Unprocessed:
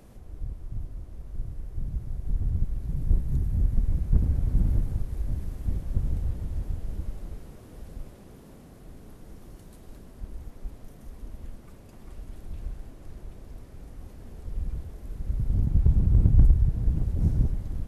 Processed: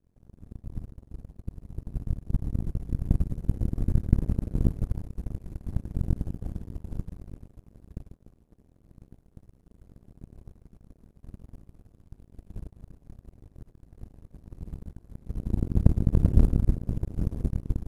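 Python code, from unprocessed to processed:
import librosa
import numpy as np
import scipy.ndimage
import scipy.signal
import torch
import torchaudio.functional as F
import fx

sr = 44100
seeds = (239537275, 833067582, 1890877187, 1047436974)

y = fx.bin_compress(x, sr, power=0.4)
y = fx.rev_schroeder(y, sr, rt60_s=1.6, comb_ms=33, drr_db=-0.5)
y = fx.power_curve(y, sr, exponent=3.0)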